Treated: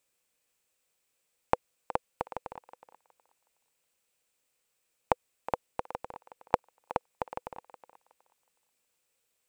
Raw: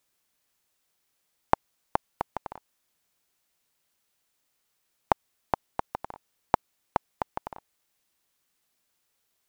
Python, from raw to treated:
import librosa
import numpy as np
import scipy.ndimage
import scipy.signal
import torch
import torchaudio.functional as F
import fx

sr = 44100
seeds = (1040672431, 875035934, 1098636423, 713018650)

y = fx.graphic_eq_31(x, sr, hz=(500, 2500, 8000), db=(10, 6, 7))
y = fx.echo_thinned(y, sr, ms=368, feedback_pct=23, hz=420.0, wet_db=-13)
y = y * librosa.db_to_amplitude(-4.5)